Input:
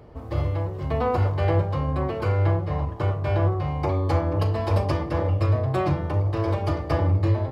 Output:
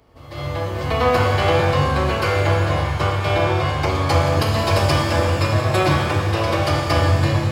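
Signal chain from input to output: tilt shelf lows -7.5 dB, about 1400 Hz; AGC gain up to 16 dB; reverse echo 0.147 s -15.5 dB; shimmer reverb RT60 1.9 s, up +7 st, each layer -8 dB, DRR 1 dB; gain -5 dB

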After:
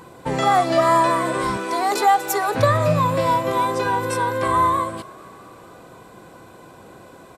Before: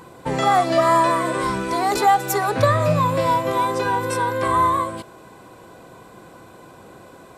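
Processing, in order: 1.57–2.55 HPF 300 Hz 12 dB/oct; frequency-shifting echo 0.225 s, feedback 64%, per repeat +33 Hz, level -23.5 dB

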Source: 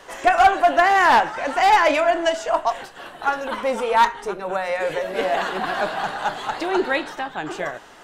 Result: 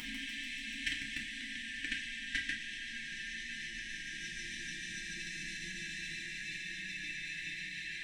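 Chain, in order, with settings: treble ducked by the level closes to 1600 Hz, closed at -12 dBFS; Paulstretch 9.4×, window 1.00 s, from 3.78; bell 390 Hz -14 dB 2 oct; FFT band-reject 360–1600 Hz; thinning echo 0.146 s, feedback 77%, high-pass 970 Hz, level -3 dB; level quantiser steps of 16 dB; bell 1900 Hz -5.5 dB 0.42 oct; FDN reverb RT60 0.4 s, low-frequency decay 0.95×, high-frequency decay 0.9×, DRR -1.5 dB; gain +4.5 dB

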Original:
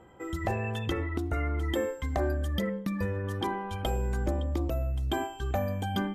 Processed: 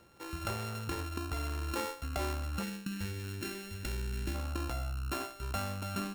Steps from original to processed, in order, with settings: sample sorter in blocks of 32 samples; spectral gain 2.63–4.35, 450–1400 Hz -11 dB; gain -6.5 dB

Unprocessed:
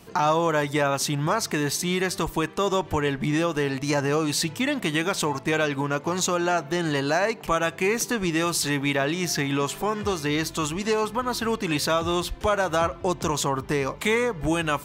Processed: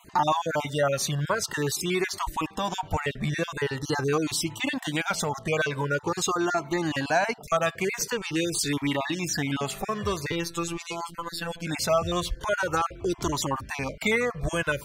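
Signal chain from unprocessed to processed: random spectral dropouts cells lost 27%; 10.32–11.67 robotiser 169 Hz; cascading flanger falling 0.45 Hz; gain +3.5 dB

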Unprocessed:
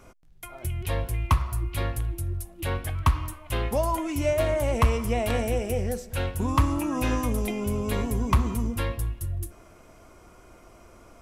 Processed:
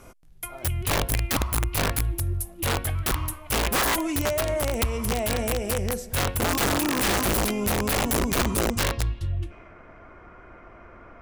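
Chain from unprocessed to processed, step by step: 4.06–6.11 compressor 5:1, threshold -25 dBFS, peak gain reduction 9.5 dB; low-pass sweep 12000 Hz -> 1800 Hz, 8.41–9.76; wrapped overs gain 20.5 dB; gain +3 dB

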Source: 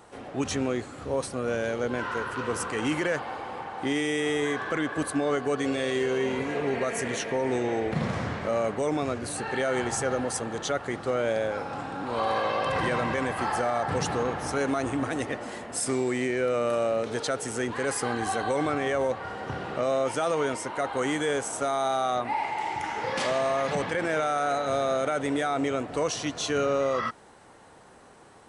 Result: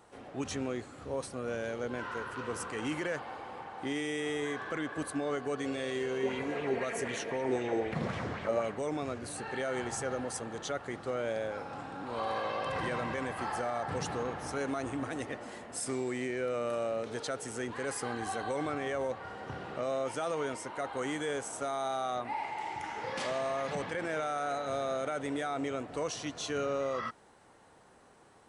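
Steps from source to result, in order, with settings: 6.23–8.72 LFO bell 3.9 Hz 320–3300 Hz +8 dB; gain -7.5 dB

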